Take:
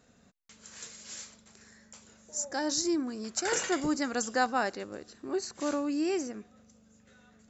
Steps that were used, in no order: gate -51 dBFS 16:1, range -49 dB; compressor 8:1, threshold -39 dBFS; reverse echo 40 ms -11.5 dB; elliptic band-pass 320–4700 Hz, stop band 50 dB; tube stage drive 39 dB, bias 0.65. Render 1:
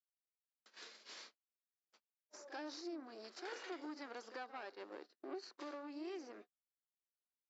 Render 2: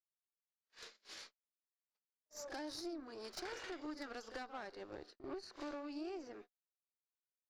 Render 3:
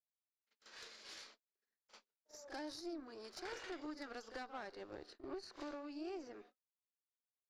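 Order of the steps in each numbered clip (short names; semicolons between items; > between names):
compressor > tube stage > reverse echo > gate > elliptic band-pass; elliptic band-pass > gate > compressor > tube stage > reverse echo; gate > compressor > elliptic band-pass > tube stage > reverse echo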